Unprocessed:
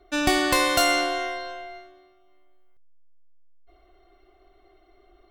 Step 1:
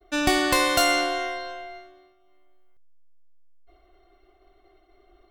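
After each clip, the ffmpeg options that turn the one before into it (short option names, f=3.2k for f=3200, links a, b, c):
-af "agate=range=-33dB:threshold=-55dB:ratio=3:detection=peak"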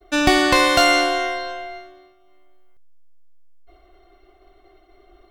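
-filter_complex "[0:a]acrossover=split=5900[a][b];[b]acompressor=threshold=-38dB:ratio=4:attack=1:release=60[c];[a][c]amix=inputs=2:normalize=0,volume=6dB"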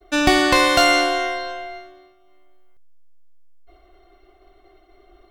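-af "bandreject=f=94.85:t=h:w=4,bandreject=f=189.7:t=h:w=4"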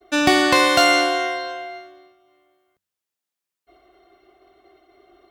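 -af "highpass=110"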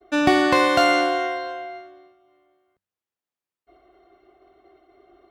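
-af "highshelf=f=2.7k:g=-11"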